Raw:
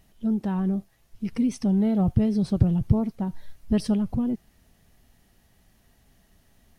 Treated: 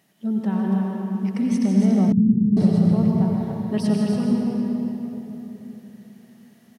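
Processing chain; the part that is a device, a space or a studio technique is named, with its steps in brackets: stadium PA (high-pass 150 Hz 24 dB/octave; peaking EQ 1.9 kHz +3.5 dB 0.45 oct; loudspeakers at several distances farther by 54 m -9 dB, 98 m -6 dB; reverberation RT60 3.7 s, pre-delay 82 ms, DRR -0.5 dB); 2.12–2.57 s: inverse Chebyshev low-pass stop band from 570 Hz, stop band 40 dB

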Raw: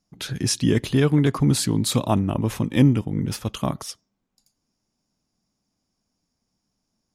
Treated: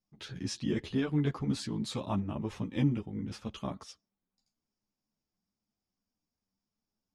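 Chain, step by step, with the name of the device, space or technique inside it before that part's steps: string-machine ensemble chorus (three-phase chorus; low-pass 5.6 kHz 12 dB/octave); trim -9 dB

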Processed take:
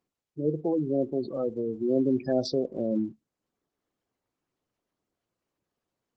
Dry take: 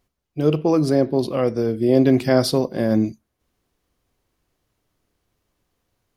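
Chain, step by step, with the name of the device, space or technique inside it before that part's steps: 2.51–2.98 s: dynamic bell 420 Hz, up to +3 dB, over -33 dBFS, Q 2.2; noise-suppressed video call (high-pass 150 Hz 12 dB/octave; spectral gate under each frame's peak -15 dB strong; trim -8.5 dB; Opus 16 kbps 48 kHz)

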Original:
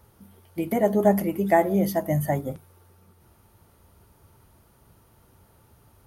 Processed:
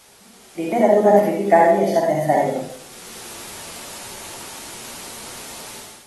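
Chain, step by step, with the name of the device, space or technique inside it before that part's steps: filmed off a television (band-pass 270–7800 Hz; peaking EQ 720 Hz +7 dB 0.34 oct; reverberation RT60 0.55 s, pre-delay 47 ms, DRR -2 dB; white noise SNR 25 dB; level rider gain up to 14 dB; trim -1 dB; AAC 32 kbps 32 kHz)

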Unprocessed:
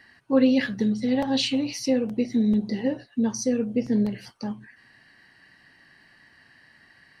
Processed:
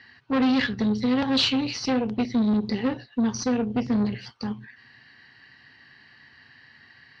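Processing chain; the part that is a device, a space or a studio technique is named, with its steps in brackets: guitar amplifier (valve stage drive 24 dB, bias 0.75; tone controls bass +5 dB, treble +10 dB; cabinet simulation 89–4200 Hz, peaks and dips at 180 Hz -10 dB, 320 Hz -6 dB, 610 Hz -8 dB); trim +7 dB

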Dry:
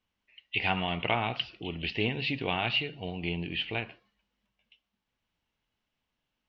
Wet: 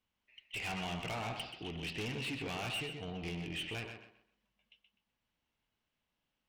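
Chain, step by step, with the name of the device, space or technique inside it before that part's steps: rockabilly slapback (valve stage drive 33 dB, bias 0.2; tape echo 127 ms, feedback 29%, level -5 dB, low-pass 4.4 kHz); trim -3 dB

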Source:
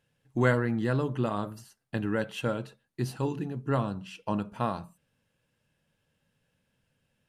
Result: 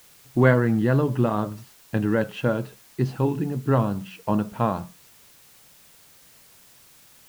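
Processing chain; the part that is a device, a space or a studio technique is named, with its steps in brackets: cassette deck with a dirty head (tape spacing loss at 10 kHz 22 dB; wow and flutter; white noise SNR 28 dB); trim +8 dB

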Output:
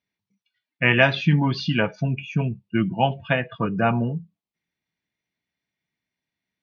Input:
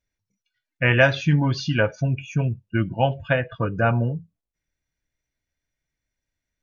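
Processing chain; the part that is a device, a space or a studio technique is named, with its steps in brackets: kitchen radio (cabinet simulation 180–4500 Hz, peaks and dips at 190 Hz +7 dB, 300 Hz -3 dB, 540 Hz -9 dB, 1.5 kHz -7 dB); trim +3.5 dB

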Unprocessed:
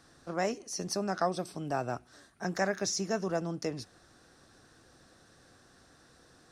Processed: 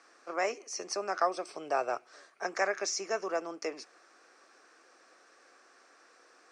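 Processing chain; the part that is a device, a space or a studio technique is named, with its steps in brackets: phone speaker on a table (cabinet simulation 360–8000 Hz, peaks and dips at 1.2 kHz +6 dB, 2.3 kHz +9 dB, 3.7 kHz -8 dB); 1.49–2.47 s: graphic EQ 125/250/500/4000 Hz +12/-5/+5/+4 dB

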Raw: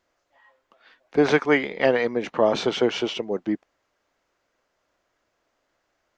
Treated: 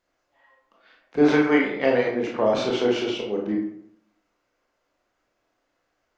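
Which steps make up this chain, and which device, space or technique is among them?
bathroom (reverberation RT60 0.70 s, pre-delay 21 ms, DRR -2 dB); trim -5 dB

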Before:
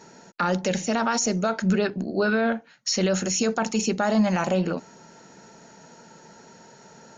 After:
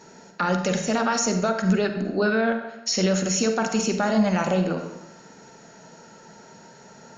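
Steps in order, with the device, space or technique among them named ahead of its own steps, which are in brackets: compressed reverb return (on a send at -3 dB: reverberation RT60 0.90 s, pre-delay 38 ms + compression, threshold -23 dBFS, peak gain reduction 6.5 dB)

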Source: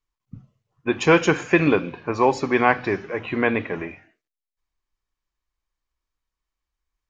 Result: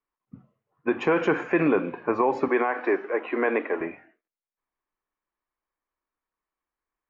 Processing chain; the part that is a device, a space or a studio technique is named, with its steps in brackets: DJ mixer with the lows and highs turned down (three-band isolator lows -19 dB, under 200 Hz, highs -24 dB, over 2.2 kHz; peak limiter -15 dBFS, peak gain reduction 12 dB); 2.48–3.81 s: high-pass 280 Hz 24 dB/octave; trim +2.5 dB

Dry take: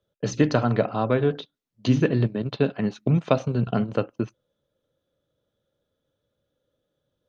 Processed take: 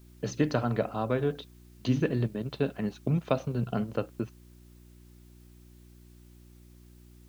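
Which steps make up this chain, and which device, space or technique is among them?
video cassette with head-switching buzz (mains buzz 60 Hz, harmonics 6, -47 dBFS -5 dB/octave; white noise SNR 34 dB); trim -6.5 dB

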